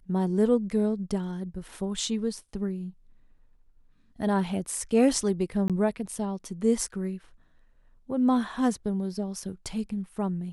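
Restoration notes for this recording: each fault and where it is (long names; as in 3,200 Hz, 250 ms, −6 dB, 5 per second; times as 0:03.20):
0:05.68–0:05.70: drop-out 17 ms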